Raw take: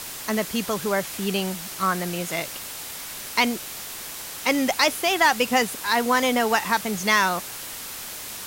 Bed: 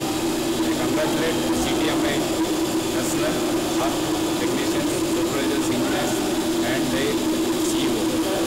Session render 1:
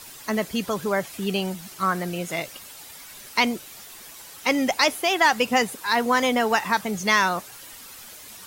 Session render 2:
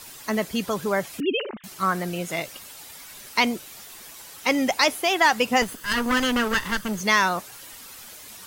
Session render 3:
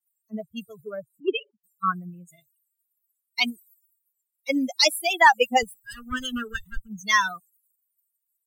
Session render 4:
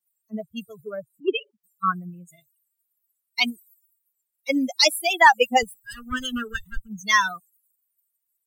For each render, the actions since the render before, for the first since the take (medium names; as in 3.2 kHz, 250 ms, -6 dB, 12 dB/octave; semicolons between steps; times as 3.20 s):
noise reduction 10 dB, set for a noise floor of -36 dBFS
1.20–1.64 s: formants replaced by sine waves; 5.62–7.01 s: comb filter that takes the minimum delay 0.64 ms
expander on every frequency bin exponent 3; three bands expanded up and down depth 100%
trim +1.5 dB